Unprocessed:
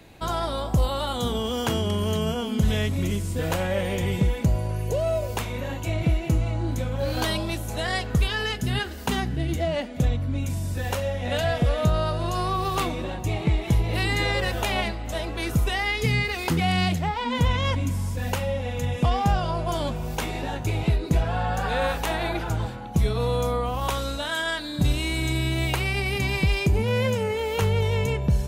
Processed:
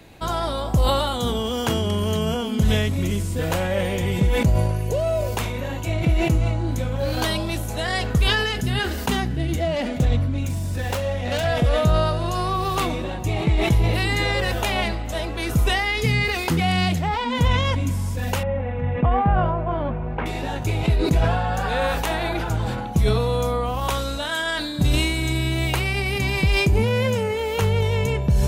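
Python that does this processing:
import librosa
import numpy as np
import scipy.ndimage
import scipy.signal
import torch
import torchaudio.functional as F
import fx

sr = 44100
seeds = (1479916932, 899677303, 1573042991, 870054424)

y = fx.self_delay(x, sr, depth_ms=0.13, at=(9.76, 11.47))
y = fx.lowpass(y, sr, hz=2100.0, slope=24, at=(18.43, 20.26))
y = fx.sustainer(y, sr, db_per_s=30.0)
y = y * 10.0 ** (2.0 / 20.0)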